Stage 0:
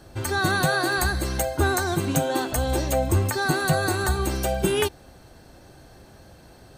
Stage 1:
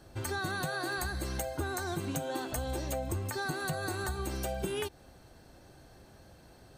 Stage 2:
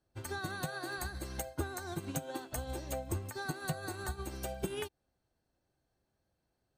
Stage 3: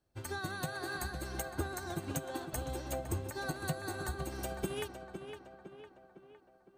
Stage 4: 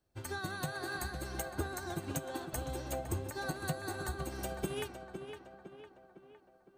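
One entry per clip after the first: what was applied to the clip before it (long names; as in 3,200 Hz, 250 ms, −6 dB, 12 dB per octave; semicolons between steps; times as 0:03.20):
downward compressor, threshold −24 dBFS, peak gain reduction 8 dB; level −7 dB
expander for the loud parts 2.5 to 1, over −48 dBFS; level +1 dB
tape delay 508 ms, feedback 57%, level −6.5 dB, low-pass 2,700 Hz
flanger 0.5 Hz, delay 1.9 ms, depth 7.2 ms, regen +89%; level +4.5 dB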